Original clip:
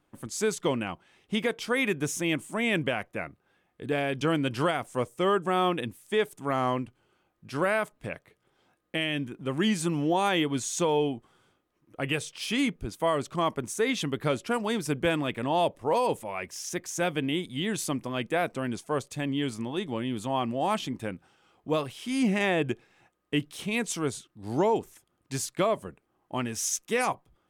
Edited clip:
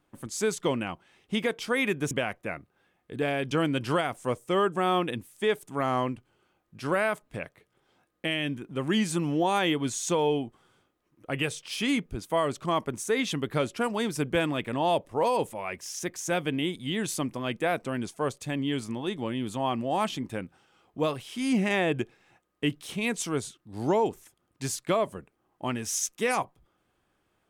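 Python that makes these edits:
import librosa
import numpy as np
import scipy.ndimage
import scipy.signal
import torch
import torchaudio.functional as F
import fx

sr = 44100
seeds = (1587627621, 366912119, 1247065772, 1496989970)

y = fx.edit(x, sr, fx.cut(start_s=2.11, length_s=0.7), tone=tone)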